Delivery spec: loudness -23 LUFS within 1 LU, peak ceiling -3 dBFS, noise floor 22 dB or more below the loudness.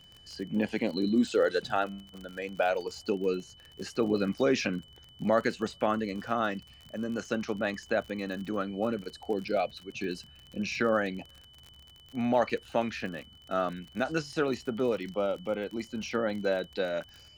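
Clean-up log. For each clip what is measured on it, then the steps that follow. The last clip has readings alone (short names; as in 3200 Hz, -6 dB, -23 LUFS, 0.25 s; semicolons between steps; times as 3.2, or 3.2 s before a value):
ticks 47/s; steady tone 3000 Hz; tone level -54 dBFS; loudness -31.0 LUFS; peak -13.5 dBFS; loudness target -23.0 LUFS
-> de-click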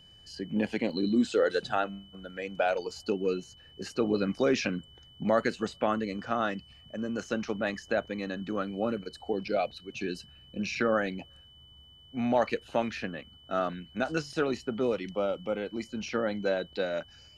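ticks 0.17/s; steady tone 3000 Hz; tone level -54 dBFS
-> notch 3000 Hz, Q 30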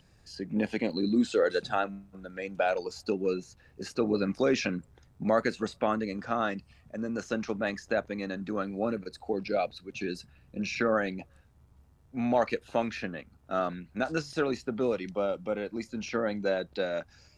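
steady tone none; loudness -31.0 LUFS; peak -13.5 dBFS; loudness target -23.0 LUFS
-> gain +8 dB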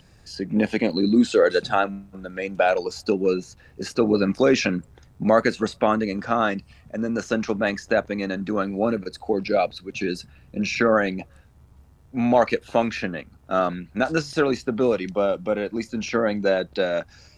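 loudness -23.0 LUFS; peak -5.5 dBFS; noise floor -53 dBFS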